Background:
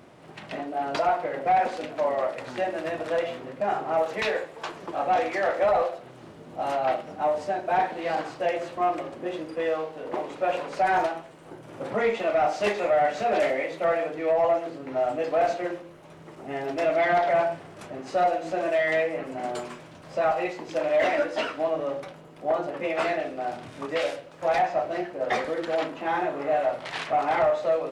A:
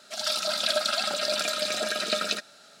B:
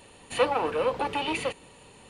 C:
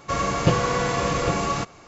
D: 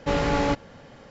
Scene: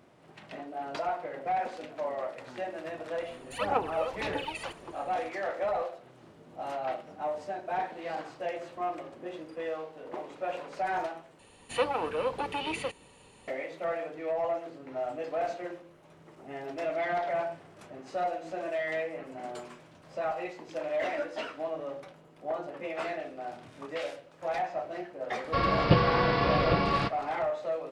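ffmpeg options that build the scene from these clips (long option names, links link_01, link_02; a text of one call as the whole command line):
ffmpeg -i bed.wav -i cue0.wav -i cue1.wav -i cue2.wav -filter_complex "[2:a]asplit=2[link_01][link_02];[0:a]volume=-8.5dB[link_03];[link_01]aphaser=in_gain=1:out_gain=1:delay=1.6:decay=0.74:speed=1.8:type=sinusoidal[link_04];[3:a]aresample=11025,aresample=44100[link_05];[link_03]asplit=2[link_06][link_07];[link_06]atrim=end=11.394[link_08];[link_02]atrim=end=2.09,asetpts=PTS-STARTPTS,volume=-4.5dB[link_09];[link_07]atrim=start=13.476[link_10];[link_04]atrim=end=2.09,asetpts=PTS-STARTPTS,volume=-10.5dB,afade=type=in:duration=0.004:curve=hsin,afade=type=out:start_time=2.086:duration=0.004:curve=hsin,adelay=3200[link_11];[link_05]atrim=end=1.87,asetpts=PTS-STARTPTS,volume=-2.5dB,afade=type=in:duration=0.004:curve=hsin,afade=type=out:start_time=1.866:duration=0.004:curve=hsin,adelay=25440[link_12];[link_08][link_09]acrossfade=duration=0.004:curve1=hsin:curve2=hsin[link_13];[link_13][link_10]acrossfade=duration=0.004:curve1=hsin:curve2=hsin[link_14];[link_14][link_11][link_12]amix=inputs=3:normalize=0" out.wav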